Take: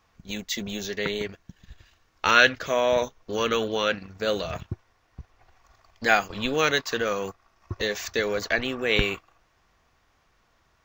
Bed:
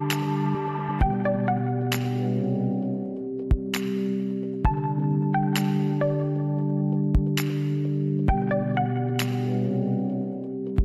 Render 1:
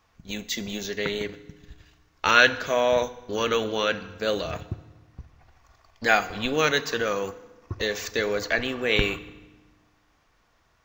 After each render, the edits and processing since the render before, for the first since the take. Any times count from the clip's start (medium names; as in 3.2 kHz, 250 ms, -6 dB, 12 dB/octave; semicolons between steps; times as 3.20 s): FDN reverb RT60 1.2 s, low-frequency decay 1.4×, high-frequency decay 0.85×, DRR 13 dB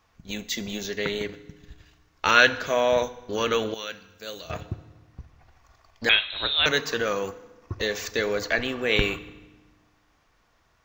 3.74–4.50 s: pre-emphasis filter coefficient 0.8; 6.09–6.66 s: frequency inversion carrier 4 kHz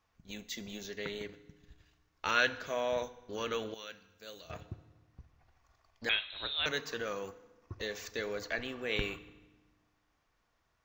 trim -11.5 dB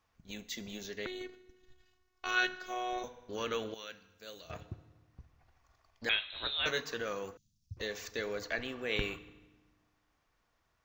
1.06–3.04 s: robot voice 369 Hz; 6.32–6.83 s: doubling 16 ms -5.5 dB; 7.37–7.77 s: inverse Chebyshev band-stop 420–1600 Hz, stop band 60 dB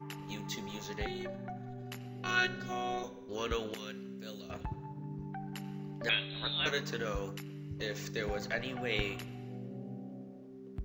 add bed -19 dB